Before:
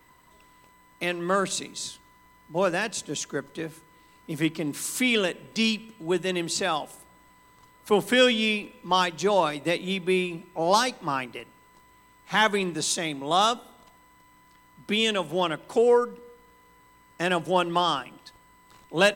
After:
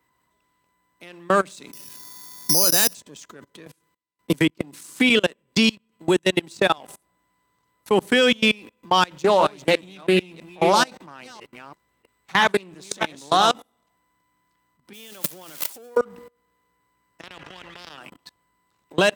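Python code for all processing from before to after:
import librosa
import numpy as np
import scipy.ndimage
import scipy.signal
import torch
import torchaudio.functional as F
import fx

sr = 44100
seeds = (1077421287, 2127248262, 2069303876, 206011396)

y = fx.chain(x, sr, fx.lowpass(hz=10000.0, slope=12),
    fx.resample_bad(factor=8, down='filtered', up='zero_stuff'),
    fx.band_squash(depth_pct=70), at=(1.73, 2.95))
y = fx.chain(y, sr, fx.gate_hold(open_db=-43.0, close_db=-46.0, hold_ms=71.0, range_db=-21, attack_ms=1.4, release_ms=100.0),
    fx.transient(attack_db=7, sustain_db=-10),
    fx.band_squash(depth_pct=40), at=(3.66, 6.78))
y = fx.chain(y, sr, fx.reverse_delay(ms=333, wet_db=-7.0),
    fx.doppler_dist(depth_ms=0.18), at=(9.07, 13.54))
y = fx.chain(y, sr, fx.crossing_spikes(level_db=-17.5),
    fx.over_compress(threshold_db=-29.0, ratio=-1.0), at=(14.93, 15.97))
y = fx.chain(y, sr, fx.spacing_loss(db_at_10k=43),
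    fx.level_steps(step_db=14),
    fx.spectral_comp(ratio=10.0), at=(17.21, 17.98))
y = fx.level_steps(y, sr, step_db=24)
y = fx.leveller(y, sr, passes=1)
y = scipy.signal.sosfilt(scipy.signal.butter(2, 61.0, 'highpass', fs=sr, output='sos'), y)
y = y * 10.0 ** (4.5 / 20.0)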